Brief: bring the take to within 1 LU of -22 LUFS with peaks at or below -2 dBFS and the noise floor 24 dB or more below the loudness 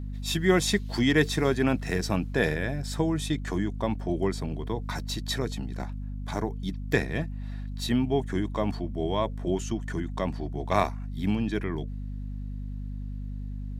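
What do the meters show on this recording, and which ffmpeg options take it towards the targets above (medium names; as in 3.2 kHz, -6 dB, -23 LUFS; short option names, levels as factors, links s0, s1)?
hum 50 Hz; highest harmonic 250 Hz; hum level -32 dBFS; loudness -29.0 LUFS; peak level -7.0 dBFS; loudness target -22.0 LUFS
-> -af "bandreject=f=50:t=h:w=6,bandreject=f=100:t=h:w=6,bandreject=f=150:t=h:w=6,bandreject=f=200:t=h:w=6,bandreject=f=250:t=h:w=6"
-af "volume=2.24,alimiter=limit=0.794:level=0:latency=1"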